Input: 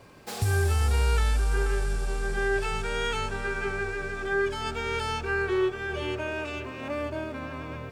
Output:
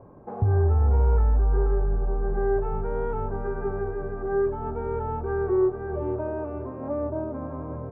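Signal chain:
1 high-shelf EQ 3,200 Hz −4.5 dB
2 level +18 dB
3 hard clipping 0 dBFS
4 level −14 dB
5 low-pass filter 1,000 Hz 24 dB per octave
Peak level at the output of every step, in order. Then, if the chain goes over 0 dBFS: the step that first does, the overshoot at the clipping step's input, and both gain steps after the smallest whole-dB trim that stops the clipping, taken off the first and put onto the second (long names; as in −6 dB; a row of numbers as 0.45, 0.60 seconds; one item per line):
−14.5, +3.5, 0.0, −14.0, −13.5 dBFS
step 2, 3.5 dB
step 2 +14 dB, step 4 −10 dB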